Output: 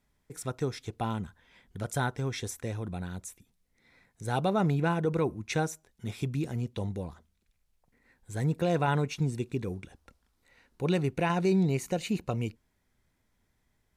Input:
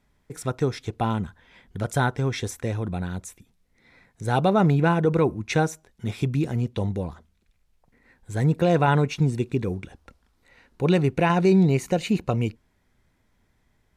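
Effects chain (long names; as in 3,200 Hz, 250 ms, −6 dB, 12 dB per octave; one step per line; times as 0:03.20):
high-shelf EQ 5,300 Hz +7 dB
level −7.5 dB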